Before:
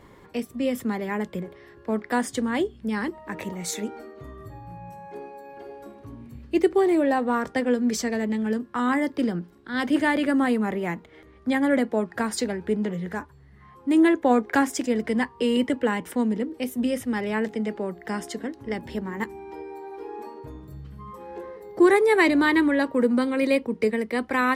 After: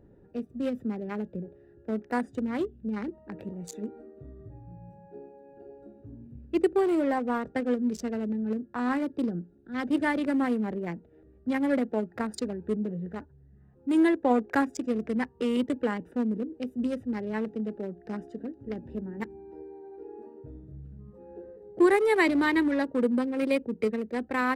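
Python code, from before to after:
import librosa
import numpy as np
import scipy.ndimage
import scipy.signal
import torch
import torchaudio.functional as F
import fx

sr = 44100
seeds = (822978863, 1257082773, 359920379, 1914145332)

y = fx.wiener(x, sr, points=41)
y = y * 10.0 ** (-3.5 / 20.0)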